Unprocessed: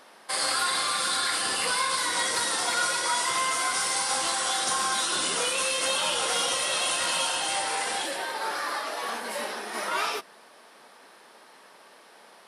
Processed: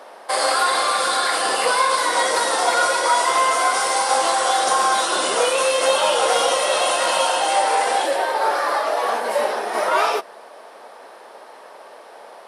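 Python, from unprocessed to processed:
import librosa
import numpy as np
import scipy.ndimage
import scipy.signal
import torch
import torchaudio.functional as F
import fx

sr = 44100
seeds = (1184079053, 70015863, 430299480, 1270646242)

y = fx.highpass(x, sr, hz=300.0, slope=6)
y = fx.peak_eq(y, sr, hz=600.0, db=14.0, octaves=2.0)
y = F.gain(torch.from_numpy(y), 2.5).numpy()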